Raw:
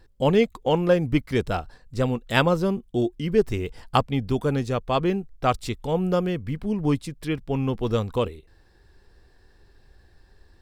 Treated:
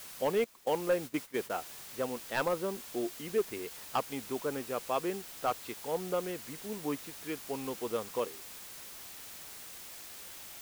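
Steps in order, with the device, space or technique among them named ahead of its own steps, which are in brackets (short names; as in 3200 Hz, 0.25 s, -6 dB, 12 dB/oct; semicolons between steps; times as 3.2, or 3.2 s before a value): aircraft radio (BPF 350–2700 Hz; hard clip -15 dBFS, distortion -15 dB; white noise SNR 11 dB); 0.44–1.5 gate -31 dBFS, range -13 dB; gain -7.5 dB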